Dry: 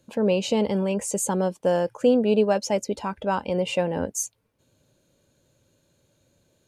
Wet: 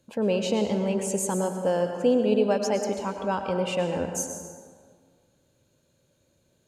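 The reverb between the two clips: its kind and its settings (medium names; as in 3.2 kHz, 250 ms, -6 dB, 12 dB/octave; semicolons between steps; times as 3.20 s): plate-style reverb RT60 1.8 s, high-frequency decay 0.55×, pre-delay 90 ms, DRR 5 dB; trim -3 dB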